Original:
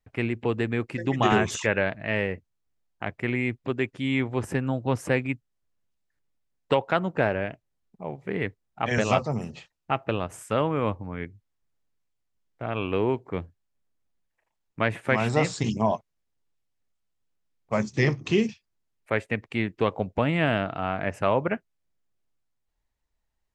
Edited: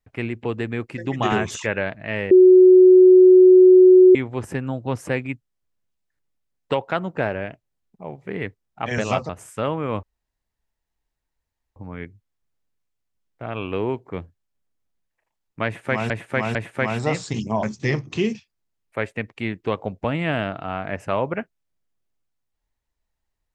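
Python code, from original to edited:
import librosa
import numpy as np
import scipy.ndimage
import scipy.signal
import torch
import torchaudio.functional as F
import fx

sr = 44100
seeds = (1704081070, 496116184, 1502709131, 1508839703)

y = fx.edit(x, sr, fx.bleep(start_s=2.31, length_s=1.84, hz=369.0, db=-6.5),
    fx.cut(start_s=9.29, length_s=0.93),
    fx.insert_room_tone(at_s=10.96, length_s=1.73),
    fx.repeat(start_s=14.85, length_s=0.45, count=3),
    fx.cut(start_s=15.93, length_s=1.84), tone=tone)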